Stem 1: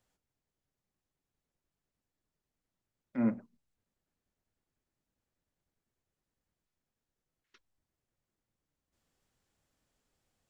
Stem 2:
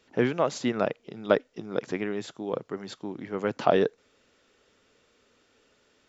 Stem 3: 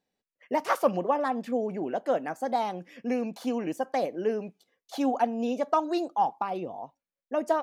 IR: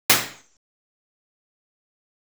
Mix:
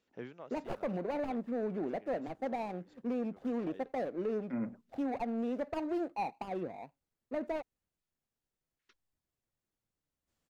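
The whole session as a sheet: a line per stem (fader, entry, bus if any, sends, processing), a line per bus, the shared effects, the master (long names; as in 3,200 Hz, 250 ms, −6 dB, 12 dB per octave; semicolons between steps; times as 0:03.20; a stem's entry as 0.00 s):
−3.5 dB, 1.35 s, no send, no processing
−16.5 dB, 0.00 s, no send, automatic ducking −13 dB, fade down 0.70 s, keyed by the third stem
−2.5 dB, 0.00 s, no send, running median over 41 samples; high-shelf EQ 3,200 Hz −11 dB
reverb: not used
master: brickwall limiter −28 dBFS, peak gain reduction 9.5 dB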